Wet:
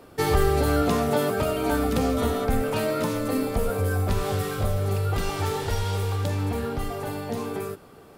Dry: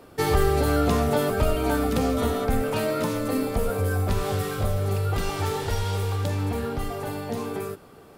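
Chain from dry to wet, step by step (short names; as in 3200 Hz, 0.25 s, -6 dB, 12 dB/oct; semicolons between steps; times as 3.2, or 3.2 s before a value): 0.82–1.71 HPF 110 Hz 12 dB/oct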